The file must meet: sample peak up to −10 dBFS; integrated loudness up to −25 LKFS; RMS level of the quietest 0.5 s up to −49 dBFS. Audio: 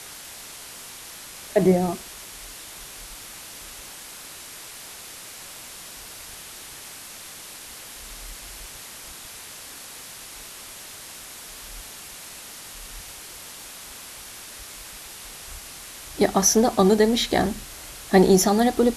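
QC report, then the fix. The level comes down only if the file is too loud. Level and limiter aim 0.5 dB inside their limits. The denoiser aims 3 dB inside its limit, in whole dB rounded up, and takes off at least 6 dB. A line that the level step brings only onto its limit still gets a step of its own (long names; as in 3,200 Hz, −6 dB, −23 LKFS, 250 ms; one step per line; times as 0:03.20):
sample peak −4.5 dBFS: out of spec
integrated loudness −20.0 LKFS: out of spec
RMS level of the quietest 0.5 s −41 dBFS: out of spec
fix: broadband denoise 6 dB, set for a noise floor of −41 dBFS
level −5.5 dB
brickwall limiter −10.5 dBFS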